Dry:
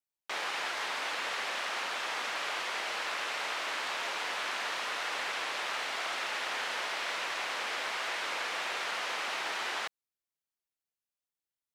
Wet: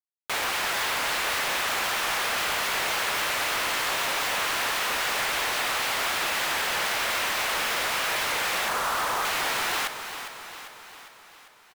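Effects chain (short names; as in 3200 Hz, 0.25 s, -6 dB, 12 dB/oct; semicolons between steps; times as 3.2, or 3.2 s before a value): 8.68–9.25 synth low-pass 1200 Hz, resonance Q 2.1; companded quantiser 2-bit; feedback echo 0.401 s, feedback 57%, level -10 dB; shaped vibrato saw down 3.8 Hz, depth 100 cents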